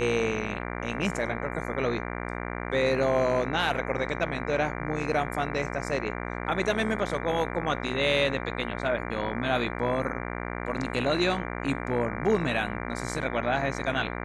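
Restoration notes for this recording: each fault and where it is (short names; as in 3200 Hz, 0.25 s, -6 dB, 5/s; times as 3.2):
buzz 60 Hz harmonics 39 -34 dBFS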